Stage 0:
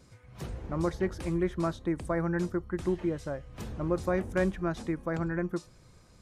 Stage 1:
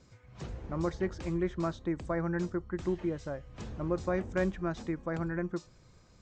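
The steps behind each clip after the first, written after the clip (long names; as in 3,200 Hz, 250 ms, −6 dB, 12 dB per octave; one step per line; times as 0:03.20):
Butterworth low-pass 7,800 Hz 72 dB per octave
level −2.5 dB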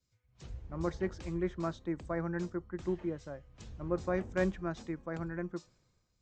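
multiband upward and downward expander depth 70%
level −3 dB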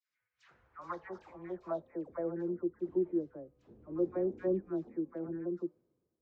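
all-pass dispersion lows, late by 94 ms, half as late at 1,200 Hz
band-pass filter sweep 1,700 Hz → 350 Hz, 0:00.37–0:02.57
level +4.5 dB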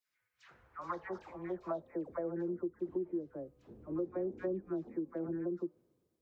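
downward compressor 6 to 1, threshold −37 dBFS, peak gain reduction 11 dB
level +3.5 dB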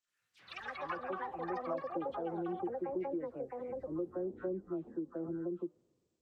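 hearing-aid frequency compression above 1,200 Hz 1.5 to 1
delay with pitch and tempo change per echo 83 ms, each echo +7 semitones, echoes 3
level −1.5 dB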